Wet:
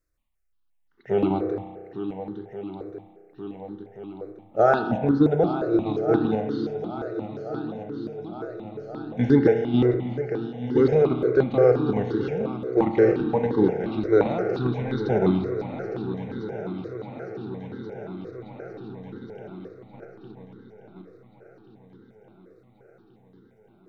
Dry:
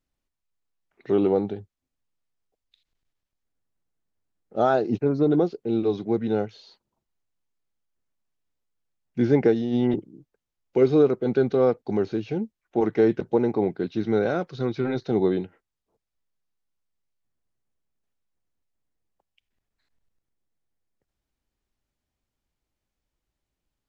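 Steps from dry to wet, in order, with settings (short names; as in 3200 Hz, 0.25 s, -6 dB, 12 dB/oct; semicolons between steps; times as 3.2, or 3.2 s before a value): swung echo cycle 1.431 s, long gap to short 1.5:1, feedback 56%, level -8.5 dB; in parallel at 0 dB: level quantiser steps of 22 dB; on the sum: bell 310 Hz +4.5 dB 0.31 oct; spring tank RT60 1.6 s, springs 32 ms, chirp 55 ms, DRR 6 dB; step phaser 5.7 Hz 840–2400 Hz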